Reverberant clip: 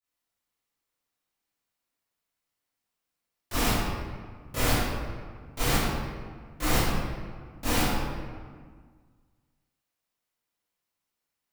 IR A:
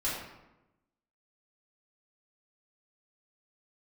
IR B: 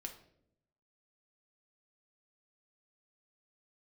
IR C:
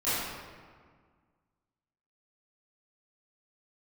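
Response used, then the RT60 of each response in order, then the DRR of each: C; 0.95, 0.75, 1.7 seconds; −9.5, 2.5, −16.0 decibels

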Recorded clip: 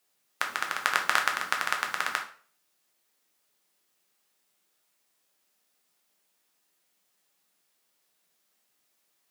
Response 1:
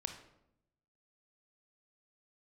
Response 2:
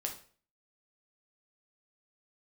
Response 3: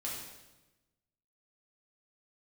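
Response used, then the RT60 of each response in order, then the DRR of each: 2; 0.80, 0.45, 1.1 seconds; 5.5, 1.5, −5.0 decibels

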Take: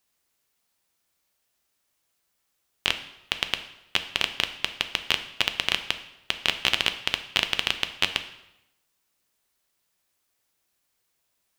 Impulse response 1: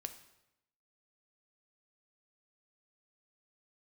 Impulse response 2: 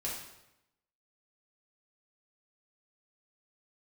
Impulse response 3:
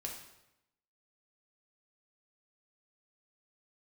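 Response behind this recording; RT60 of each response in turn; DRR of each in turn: 1; 0.90, 0.90, 0.90 seconds; 8.0, −6.0, −0.5 decibels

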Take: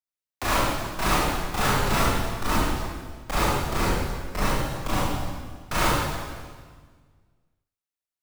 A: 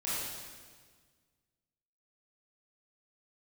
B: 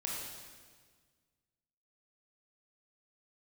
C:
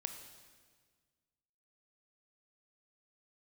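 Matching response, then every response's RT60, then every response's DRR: A; 1.6, 1.6, 1.6 seconds; −10.5, −3.5, 6.0 decibels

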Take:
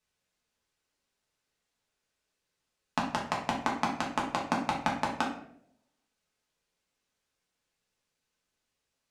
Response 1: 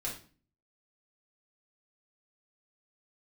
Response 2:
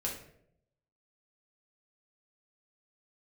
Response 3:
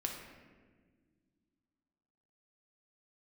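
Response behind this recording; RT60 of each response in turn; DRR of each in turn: 2; 0.40, 0.70, 1.6 seconds; −4.0, −3.5, 1.0 decibels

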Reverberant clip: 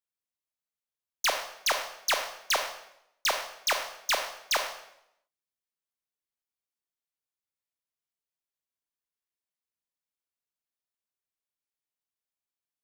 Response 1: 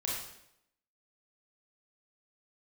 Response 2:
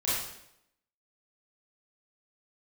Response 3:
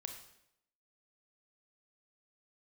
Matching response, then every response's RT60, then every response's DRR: 3; 0.75, 0.75, 0.80 seconds; −4.5, −10.5, 4.5 decibels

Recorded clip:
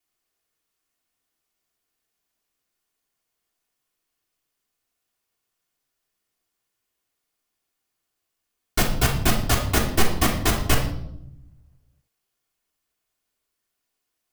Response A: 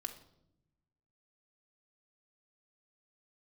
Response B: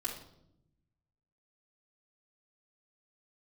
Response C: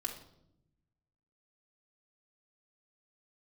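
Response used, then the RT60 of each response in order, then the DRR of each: B; 0.80, 0.80, 0.80 seconds; 3.5, −6.0, −0.5 decibels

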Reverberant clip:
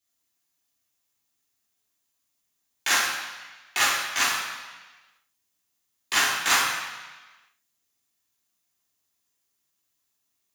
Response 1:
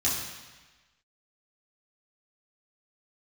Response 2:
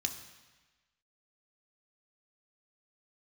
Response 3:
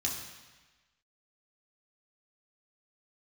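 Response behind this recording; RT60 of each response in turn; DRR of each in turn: 1; 1.2, 1.2, 1.2 seconds; −8.0, 5.0, −2.5 decibels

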